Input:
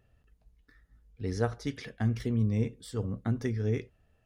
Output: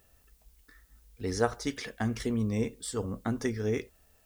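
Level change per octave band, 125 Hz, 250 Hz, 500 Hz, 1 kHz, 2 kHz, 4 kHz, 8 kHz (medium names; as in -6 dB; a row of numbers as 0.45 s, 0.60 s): -5.5 dB, +0.5 dB, +3.0 dB, +5.5 dB, +4.5 dB, +5.5 dB, +10.0 dB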